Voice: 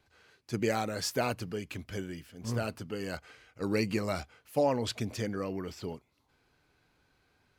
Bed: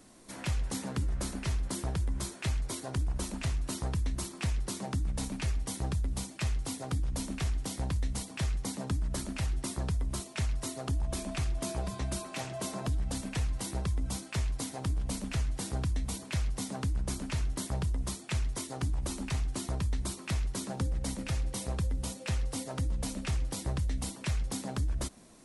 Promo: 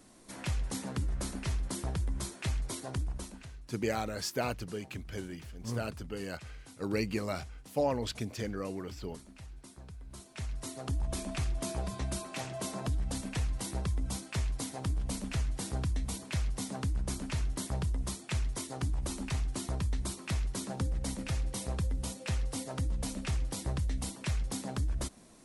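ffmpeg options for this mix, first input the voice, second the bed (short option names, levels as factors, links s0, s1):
-filter_complex "[0:a]adelay=3200,volume=0.75[s0];[1:a]volume=5.01,afade=t=out:st=2.91:d=0.56:silence=0.177828,afade=t=in:st=10.04:d=1:silence=0.16788[s1];[s0][s1]amix=inputs=2:normalize=0"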